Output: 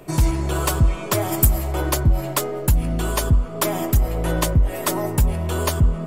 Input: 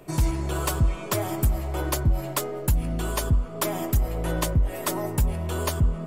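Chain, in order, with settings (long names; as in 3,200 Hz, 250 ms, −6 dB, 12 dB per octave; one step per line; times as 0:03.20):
0:01.31–0:01.71: high-shelf EQ 4,300 Hz → 8,200 Hz +11 dB
level +5 dB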